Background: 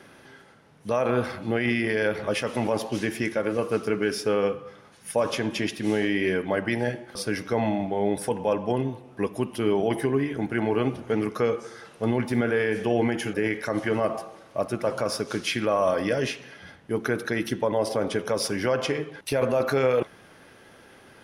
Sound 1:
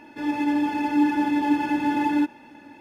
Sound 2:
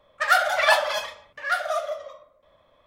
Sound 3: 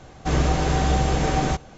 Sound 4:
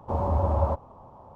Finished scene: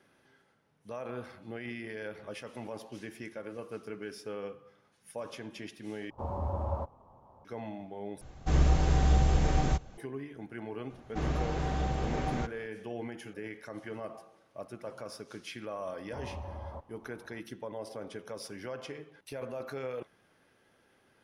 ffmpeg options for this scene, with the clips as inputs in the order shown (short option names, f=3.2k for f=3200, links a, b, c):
-filter_complex "[4:a]asplit=2[a][b];[3:a]asplit=2[c][d];[0:a]volume=-16dB[e];[c]lowshelf=f=100:g=12[f];[d]aemphasis=mode=reproduction:type=50kf[g];[b]alimiter=limit=-22.5dB:level=0:latency=1:release=195[h];[e]asplit=3[i][j][k];[i]atrim=end=6.104[l];[a]atrim=end=1.35,asetpts=PTS-STARTPTS,volume=-9.5dB[m];[j]atrim=start=7.446:end=8.214[n];[f]atrim=end=1.77,asetpts=PTS-STARTPTS,volume=-10dB[o];[k]atrim=start=9.976[p];[g]atrim=end=1.77,asetpts=PTS-STARTPTS,volume=-11dB,afade=t=in:d=0.004:c=hsin,afade=t=out:st=1.766:d=0.004:c=hsin,adelay=480690S[q];[h]atrim=end=1.35,asetpts=PTS-STARTPTS,volume=-11dB,afade=t=in:d=0.004:c=hsin,afade=t=out:st=1.346:d=0.004:c=hsin,adelay=16050[r];[l][m]acrossfade=d=0.004:c1=hsin:c2=hsin[s];[s][n]acrossfade=d=0.004:c1=hsin:c2=hsin[t];[t][o]acrossfade=d=0.004:c1=hsin:c2=hsin[u];[u][p]acrossfade=d=0.004:c1=hsin:c2=hsin[v];[v][q][r]amix=inputs=3:normalize=0"